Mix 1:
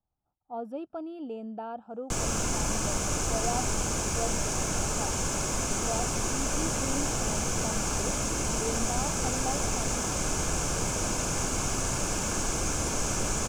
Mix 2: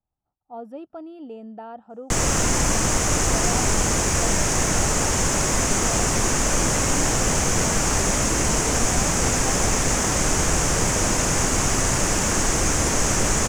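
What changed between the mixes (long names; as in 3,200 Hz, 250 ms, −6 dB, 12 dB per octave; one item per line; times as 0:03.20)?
background +8.5 dB
master: remove Butterworth band-reject 1,900 Hz, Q 5.4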